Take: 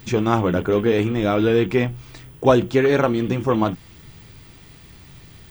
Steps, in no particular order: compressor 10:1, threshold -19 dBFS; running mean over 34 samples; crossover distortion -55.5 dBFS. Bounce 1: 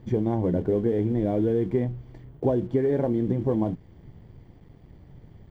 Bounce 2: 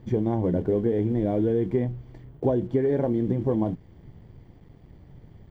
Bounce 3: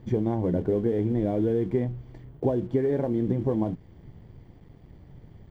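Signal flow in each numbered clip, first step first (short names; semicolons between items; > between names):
running mean > compressor > crossover distortion; running mean > crossover distortion > compressor; compressor > running mean > crossover distortion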